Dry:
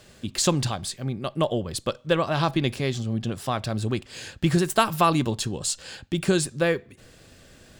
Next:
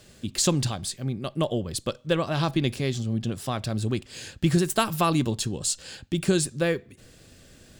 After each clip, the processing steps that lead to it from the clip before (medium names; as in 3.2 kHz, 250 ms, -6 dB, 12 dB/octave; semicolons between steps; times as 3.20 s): FFT filter 290 Hz 0 dB, 940 Hz -5 dB, 7.9 kHz +1 dB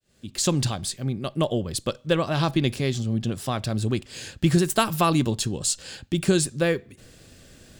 fade-in on the opening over 0.62 s; trim +2 dB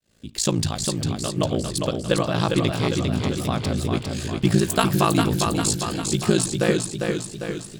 ring modulator 28 Hz; modulated delay 402 ms, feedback 58%, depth 56 cents, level -4.5 dB; trim +3.5 dB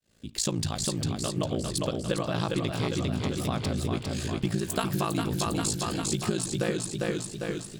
compression, threshold -21 dBFS, peak gain reduction 8.5 dB; trim -3 dB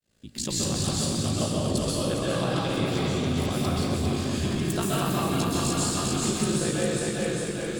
plate-style reverb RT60 1.3 s, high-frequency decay 0.95×, pre-delay 115 ms, DRR -5.5 dB; trim -3.5 dB